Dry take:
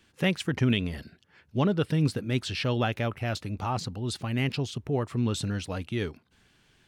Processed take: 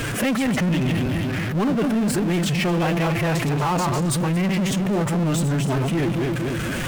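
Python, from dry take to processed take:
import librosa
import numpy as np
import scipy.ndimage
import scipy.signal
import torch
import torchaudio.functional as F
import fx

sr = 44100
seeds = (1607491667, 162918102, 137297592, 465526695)

y = fx.reverse_delay_fb(x, sr, ms=118, feedback_pct=46, wet_db=-6.5)
y = fx.peak_eq(y, sr, hz=4200.0, db=-13.5, octaves=0.9)
y = fx.pitch_keep_formants(y, sr, semitones=6.0)
y = fx.power_curve(y, sr, exponent=0.5)
y = fx.env_flatten(y, sr, amount_pct=70)
y = y * 10.0 ** (-2.0 / 20.0)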